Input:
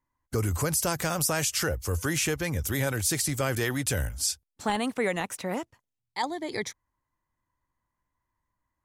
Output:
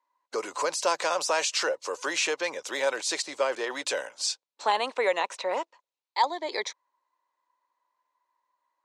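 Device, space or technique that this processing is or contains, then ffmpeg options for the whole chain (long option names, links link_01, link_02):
phone speaker on a table: -filter_complex "[0:a]asettb=1/sr,asplit=3[link_01][link_02][link_03];[link_01]atrim=end=3.224[link_04];[link_02]atrim=start=3.22:end=3.71,asetpts=PTS-STARTPTS,afade=type=in:duration=0.004:curve=qsin,afade=type=out:start_time=0.486:duration=0.004:curve=qsin,deesser=0.8[link_05];[link_03]atrim=start=3.706[link_06];[link_04][link_05]acrossfade=duration=0.004:curve1=hsin:curve2=qsin[link_07];[link_07][link_06]acrossfade=duration=0.004:curve1=qsin:curve2=hsin,highpass=frequency=390:width=0.5412,highpass=frequency=390:width=1.3066,equalizer=frequency=560:width_type=q:width=4:gain=6,equalizer=frequency=980:width_type=q:width=4:gain=10,equalizer=frequency=2600:width_type=q:width=4:gain=4,equalizer=frequency=4000:width_type=q:width=4:gain=7,lowpass=frequency=7200:width=0.5412,lowpass=frequency=7200:width=1.3066"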